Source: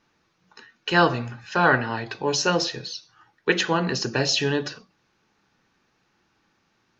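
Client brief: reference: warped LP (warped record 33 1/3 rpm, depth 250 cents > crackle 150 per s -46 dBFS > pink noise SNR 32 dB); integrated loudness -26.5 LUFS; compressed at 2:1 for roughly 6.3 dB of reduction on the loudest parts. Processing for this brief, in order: compression 2:1, threshold -24 dBFS; warped record 33 1/3 rpm, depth 250 cents; crackle 150 per s -46 dBFS; pink noise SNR 32 dB; trim +1 dB

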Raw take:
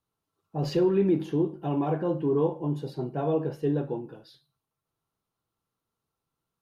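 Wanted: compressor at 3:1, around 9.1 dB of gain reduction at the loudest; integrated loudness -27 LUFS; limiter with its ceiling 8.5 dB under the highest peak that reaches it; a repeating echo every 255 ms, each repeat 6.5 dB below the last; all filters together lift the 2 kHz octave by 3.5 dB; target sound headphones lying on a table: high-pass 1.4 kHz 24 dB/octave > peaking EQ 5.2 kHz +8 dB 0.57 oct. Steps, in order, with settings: peaking EQ 2 kHz +5.5 dB; compression 3:1, threshold -32 dBFS; peak limiter -30 dBFS; high-pass 1.4 kHz 24 dB/octave; peaking EQ 5.2 kHz +8 dB 0.57 oct; feedback delay 255 ms, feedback 47%, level -6.5 dB; trim +22.5 dB

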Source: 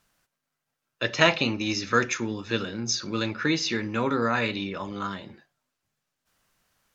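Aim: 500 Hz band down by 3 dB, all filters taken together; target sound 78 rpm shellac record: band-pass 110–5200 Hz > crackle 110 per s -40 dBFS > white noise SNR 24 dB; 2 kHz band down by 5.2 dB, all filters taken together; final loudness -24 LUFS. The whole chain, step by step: band-pass 110–5200 Hz; peaking EQ 500 Hz -3.5 dB; peaking EQ 2 kHz -6.5 dB; crackle 110 per s -40 dBFS; white noise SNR 24 dB; trim +5.5 dB

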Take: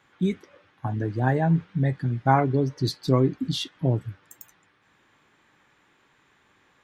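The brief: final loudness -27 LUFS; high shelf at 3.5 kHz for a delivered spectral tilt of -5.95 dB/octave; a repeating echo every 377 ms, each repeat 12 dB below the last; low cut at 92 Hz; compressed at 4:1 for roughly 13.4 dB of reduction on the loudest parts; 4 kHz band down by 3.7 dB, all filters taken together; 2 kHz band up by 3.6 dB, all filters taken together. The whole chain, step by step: high-pass 92 Hz; peaking EQ 2 kHz +6.5 dB; treble shelf 3.5 kHz -3.5 dB; peaking EQ 4 kHz -4 dB; compression 4:1, threshold -31 dBFS; feedback delay 377 ms, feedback 25%, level -12 dB; trim +8.5 dB

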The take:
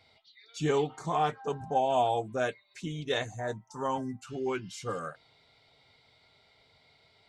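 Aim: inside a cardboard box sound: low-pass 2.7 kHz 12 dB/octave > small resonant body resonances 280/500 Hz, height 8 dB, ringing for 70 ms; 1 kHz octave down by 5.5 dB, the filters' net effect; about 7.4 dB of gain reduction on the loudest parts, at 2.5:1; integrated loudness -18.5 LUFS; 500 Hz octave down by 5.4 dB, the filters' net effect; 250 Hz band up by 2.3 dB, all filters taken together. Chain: peaking EQ 250 Hz +5.5 dB; peaking EQ 500 Hz -7.5 dB; peaking EQ 1 kHz -4.5 dB; compression 2.5:1, threshold -35 dBFS; low-pass 2.7 kHz 12 dB/octave; small resonant body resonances 280/500 Hz, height 8 dB, ringing for 70 ms; trim +18.5 dB

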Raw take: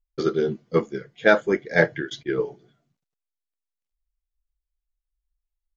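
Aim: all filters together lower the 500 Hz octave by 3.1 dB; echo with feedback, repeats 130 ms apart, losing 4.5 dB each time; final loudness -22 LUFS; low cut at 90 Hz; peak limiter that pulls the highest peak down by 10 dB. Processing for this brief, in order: high-pass 90 Hz; peaking EQ 500 Hz -4 dB; peak limiter -13.5 dBFS; feedback delay 130 ms, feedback 60%, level -4.5 dB; trim +5.5 dB

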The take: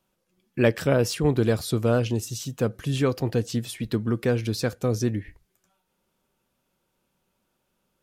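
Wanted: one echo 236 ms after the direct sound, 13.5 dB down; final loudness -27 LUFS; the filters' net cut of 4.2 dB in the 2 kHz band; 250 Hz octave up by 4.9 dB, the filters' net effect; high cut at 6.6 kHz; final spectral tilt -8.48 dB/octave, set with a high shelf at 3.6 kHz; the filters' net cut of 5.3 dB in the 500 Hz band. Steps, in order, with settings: low-pass 6.6 kHz; peaking EQ 250 Hz +8 dB; peaking EQ 500 Hz -9 dB; peaking EQ 2 kHz -3 dB; treble shelf 3.6 kHz -8 dB; delay 236 ms -13.5 dB; trim -3 dB

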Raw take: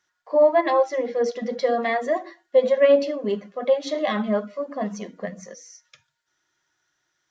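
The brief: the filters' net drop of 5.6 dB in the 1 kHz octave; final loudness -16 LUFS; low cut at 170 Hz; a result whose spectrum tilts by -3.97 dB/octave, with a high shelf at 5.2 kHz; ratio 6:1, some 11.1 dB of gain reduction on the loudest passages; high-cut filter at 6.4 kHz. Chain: high-pass 170 Hz; low-pass 6.4 kHz; peaking EQ 1 kHz -8.5 dB; treble shelf 5.2 kHz -5 dB; compression 6:1, threshold -26 dBFS; trim +15.5 dB

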